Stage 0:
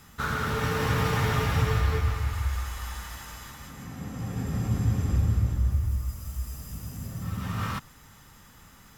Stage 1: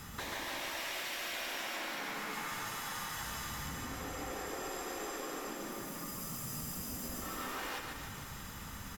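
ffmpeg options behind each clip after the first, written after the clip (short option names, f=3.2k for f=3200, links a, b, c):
-filter_complex "[0:a]afftfilt=real='re*lt(hypot(re,im),0.0631)':imag='im*lt(hypot(re,im),0.0631)':win_size=1024:overlap=0.75,acompressor=threshold=-44dB:ratio=6,asplit=2[a][b];[b]aecho=0:1:140|294|463.4|649.7|854.7:0.631|0.398|0.251|0.158|0.1[c];[a][c]amix=inputs=2:normalize=0,volume=4.5dB"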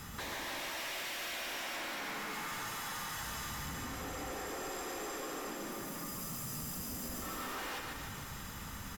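-af "asoftclip=type=hard:threshold=-37.5dB,volume=1dB"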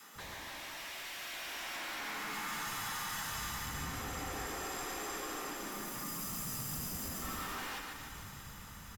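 -filter_complex "[0:a]adynamicequalizer=threshold=0.00126:dfrequency=530:dqfactor=2.4:tfrequency=530:tqfactor=2.4:attack=5:release=100:ratio=0.375:range=3:mode=cutabove:tftype=bell,dynaudnorm=f=320:g=11:m=7dB,acrossover=split=270[a][b];[a]adelay=150[c];[c][b]amix=inputs=2:normalize=0,volume=-5dB"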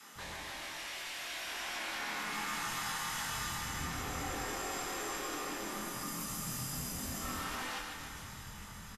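-filter_complex "[0:a]lowpass=12k,asplit=2[a][b];[b]adelay=24,volume=-3dB[c];[a][c]amix=inputs=2:normalize=0" -ar 32000 -c:a libvorbis -b:a 48k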